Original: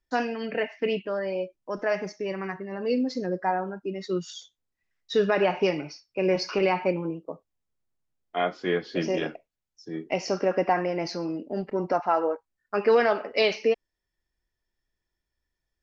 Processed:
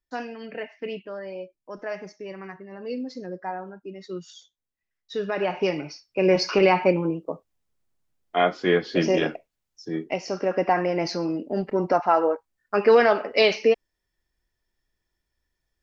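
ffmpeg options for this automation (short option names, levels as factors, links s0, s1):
-af "volume=4.47,afade=t=in:st=5.22:d=1.24:silence=0.266073,afade=t=out:st=9.94:d=0.27:silence=0.354813,afade=t=in:st=10.21:d=0.77:silence=0.421697"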